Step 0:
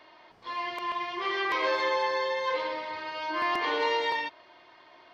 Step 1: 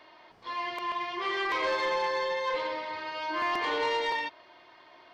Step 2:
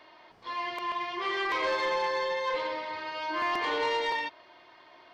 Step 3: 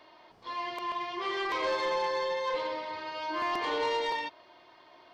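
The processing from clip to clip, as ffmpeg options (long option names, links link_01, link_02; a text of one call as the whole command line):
ffmpeg -i in.wav -af "asoftclip=type=tanh:threshold=-21dB" out.wav
ffmpeg -i in.wav -af anull out.wav
ffmpeg -i in.wav -af "equalizer=frequency=1900:width=1.1:gain=-4.5" out.wav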